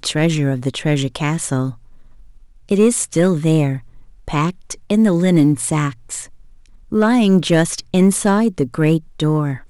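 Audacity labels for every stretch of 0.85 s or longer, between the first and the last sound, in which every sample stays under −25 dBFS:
1.700000	2.690000	silence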